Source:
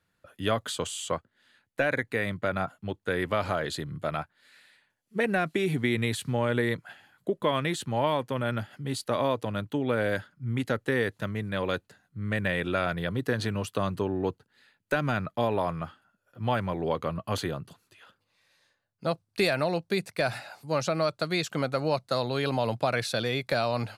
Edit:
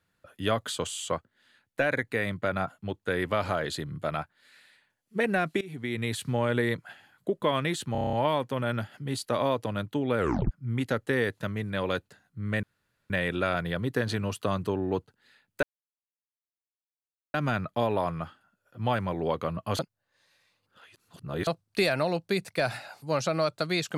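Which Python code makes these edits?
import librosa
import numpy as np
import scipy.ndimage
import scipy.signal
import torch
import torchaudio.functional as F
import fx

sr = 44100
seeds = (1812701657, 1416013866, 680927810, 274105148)

y = fx.edit(x, sr, fx.fade_in_from(start_s=5.61, length_s=0.63, floor_db=-20.5),
    fx.stutter(start_s=7.92, slice_s=0.03, count=8),
    fx.tape_stop(start_s=9.97, length_s=0.33),
    fx.insert_room_tone(at_s=12.42, length_s=0.47),
    fx.insert_silence(at_s=14.95, length_s=1.71),
    fx.reverse_span(start_s=17.4, length_s=1.68), tone=tone)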